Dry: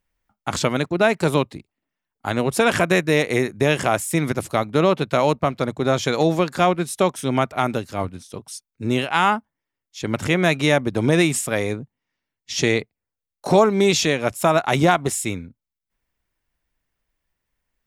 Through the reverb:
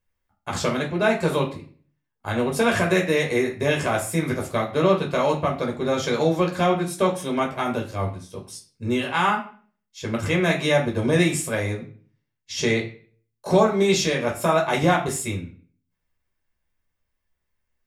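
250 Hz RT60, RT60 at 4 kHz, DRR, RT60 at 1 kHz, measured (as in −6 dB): 0.55 s, 0.35 s, −0.5 dB, 0.40 s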